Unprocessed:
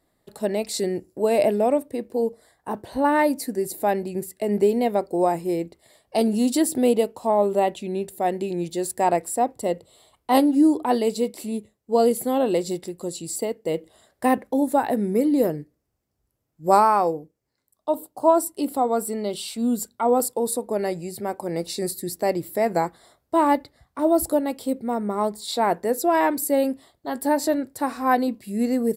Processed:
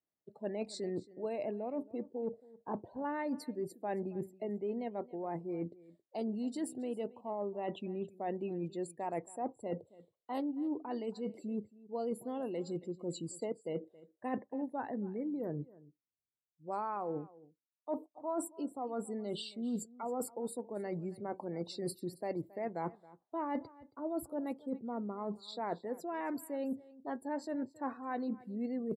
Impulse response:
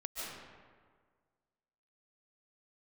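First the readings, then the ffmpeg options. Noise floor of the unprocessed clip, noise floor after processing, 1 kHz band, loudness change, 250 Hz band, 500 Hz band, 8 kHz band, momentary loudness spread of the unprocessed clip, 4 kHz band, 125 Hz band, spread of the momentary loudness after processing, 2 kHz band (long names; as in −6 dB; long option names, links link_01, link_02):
−75 dBFS, below −85 dBFS, −18.5 dB, −16.5 dB, −15.0 dB, −16.5 dB, −20.0 dB, 10 LU, −16.0 dB, −10.5 dB, 5 LU, −18.0 dB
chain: -filter_complex "[0:a]lowpass=frequency=3300:poles=1,afftdn=noise_reduction=26:noise_floor=-40,areverse,acompressor=threshold=-33dB:ratio=8,areverse,adynamicequalizer=threshold=0.00562:dfrequency=650:dqfactor=0.84:tfrequency=650:tqfactor=0.84:attack=5:release=100:ratio=0.375:range=2.5:mode=cutabove:tftype=bell,highpass=100,asplit=2[link_01][link_02];[link_02]aecho=0:1:273:0.0944[link_03];[link_01][link_03]amix=inputs=2:normalize=0,volume=-1dB"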